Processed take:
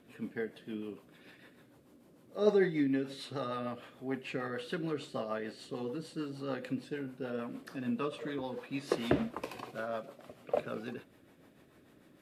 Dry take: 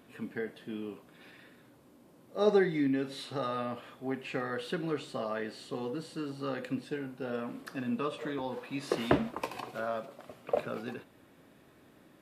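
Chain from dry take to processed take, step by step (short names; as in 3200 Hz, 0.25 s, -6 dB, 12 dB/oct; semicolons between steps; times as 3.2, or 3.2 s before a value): rotary speaker horn 6.7 Hz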